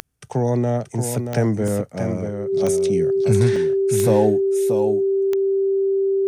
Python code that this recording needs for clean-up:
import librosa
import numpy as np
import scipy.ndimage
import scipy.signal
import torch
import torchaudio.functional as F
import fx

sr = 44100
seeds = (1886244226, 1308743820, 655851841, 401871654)

y = fx.fix_declick_ar(x, sr, threshold=10.0)
y = fx.notch(y, sr, hz=390.0, q=30.0)
y = fx.fix_interpolate(y, sr, at_s=(1.68, 3.56), length_ms=2.8)
y = fx.fix_echo_inverse(y, sr, delay_ms=630, level_db=-7.0)